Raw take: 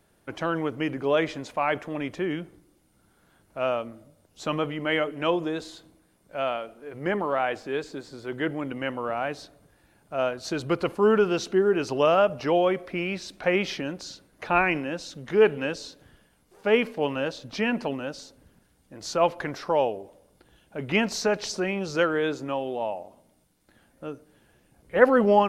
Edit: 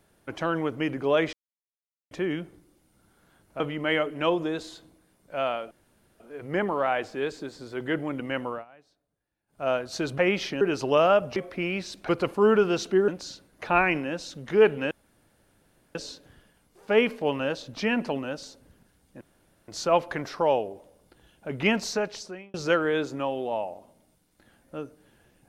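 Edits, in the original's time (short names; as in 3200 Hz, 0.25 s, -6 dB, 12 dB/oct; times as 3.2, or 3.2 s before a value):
1.33–2.11 mute
3.6–4.61 cut
6.72 insert room tone 0.49 s
9–10.16 dip -24 dB, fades 0.17 s
10.7–11.69 swap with 13.45–13.88
12.44–12.72 cut
15.71 insert room tone 1.04 s
18.97 insert room tone 0.47 s
21.02–21.83 fade out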